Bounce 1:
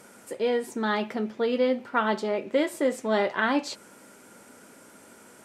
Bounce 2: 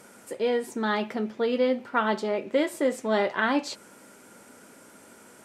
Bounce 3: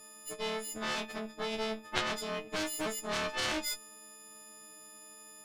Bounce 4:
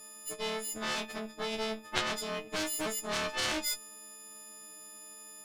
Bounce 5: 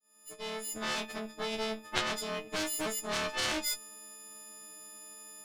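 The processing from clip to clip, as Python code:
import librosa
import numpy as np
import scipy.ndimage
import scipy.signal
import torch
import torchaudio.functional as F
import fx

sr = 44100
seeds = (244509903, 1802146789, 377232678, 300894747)

y1 = x
y2 = fx.freq_snap(y1, sr, grid_st=6)
y2 = fx.cheby_harmonics(y2, sr, harmonics=(3, 8), levels_db=(-6, -21), full_scale_db=-7.5)
y2 = y2 * 10.0 ** (-5.0 / 20.0)
y3 = fx.high_shelf(y2, sr, hz=4900.0, db=4.5)
y4 = fx.fade_in_head(y3, sr, length_s=0.76)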